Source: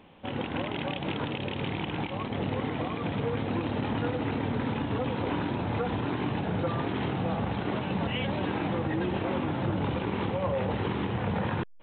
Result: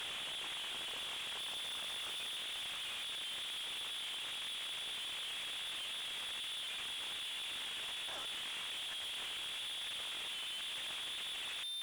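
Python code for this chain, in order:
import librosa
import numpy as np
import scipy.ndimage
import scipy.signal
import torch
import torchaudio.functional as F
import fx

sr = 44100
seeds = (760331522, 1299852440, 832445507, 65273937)

y = np.sign(x) * np.sqrt(np.mean(np.square(x)))
y = fx.low_shelf(y, sr, hz=94.0, db=11.5, at=(1.39, 2.37))
y = fx.freq_invert(y, sr, carrier_hz=3600)
y = fx.low_shelf(y, sr, hz=340.0, db=-9.5)
y = fx.echo_diffused(y, sr, ms=751, feedback_pct=40, wet_db=-8)
y = 10.0 ** (-35.5 / 20.0) * np.tanh(y / 10.0 ** (-35.5 / 20.0))
y = F.gain(torch.from_numpy(y), -5.5).numpy()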